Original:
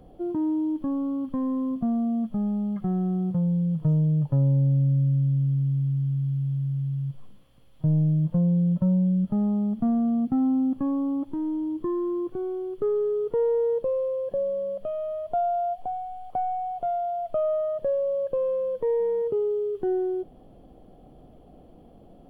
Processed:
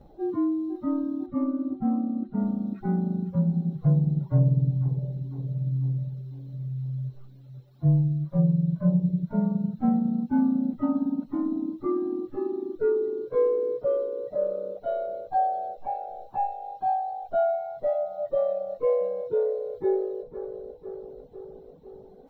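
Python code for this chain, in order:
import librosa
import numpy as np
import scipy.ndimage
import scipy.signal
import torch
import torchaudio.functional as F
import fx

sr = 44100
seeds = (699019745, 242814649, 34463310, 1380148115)

y = fx.partial_stretch(x, sr, pct=108)
y = fx.echo_tape(y, sr, ms=500, feedback_pct=68, wet_db=-7.5, lp_hz=1400.0, drive_db=15.0, wow_cents=8)
y = fx.dereverb_blind(y, sr, rt60_s=1.4)
y = fx.air_absorb(y, sr, metres=250.0, at=(1.26, 2.4))
y = y * librosa.db_to_amplitude(2.5)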